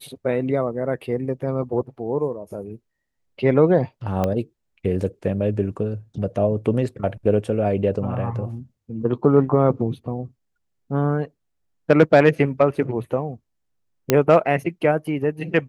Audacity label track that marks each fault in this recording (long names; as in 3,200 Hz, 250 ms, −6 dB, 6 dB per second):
4.240000	4.240000	click −10 dBFS
14.100000	14.100000	click −2 dBFS